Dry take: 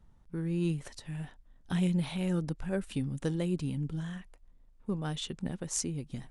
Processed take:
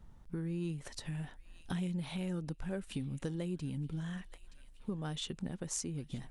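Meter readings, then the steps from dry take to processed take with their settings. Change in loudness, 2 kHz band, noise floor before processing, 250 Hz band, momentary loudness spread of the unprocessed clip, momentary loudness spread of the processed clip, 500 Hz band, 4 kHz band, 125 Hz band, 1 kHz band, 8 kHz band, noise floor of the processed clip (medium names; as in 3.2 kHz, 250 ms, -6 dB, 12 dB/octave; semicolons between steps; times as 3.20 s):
-5.5 dB, -4.5 dB, -60 dBFS, -6.0 dB, 11 LU, 8 LU, -6.0 dB, -3.0 dB, -5.5 dB, -4.5 dB, -4.5 dB, -57 dBFS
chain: feedback echo behind a high-pass 923 ms, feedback 39%, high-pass 1.7 kHz, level -20.5 dB; compression 3:1, threshold -43 dBFS, peak gain reduction 13.5 dB; trim +4.5 dB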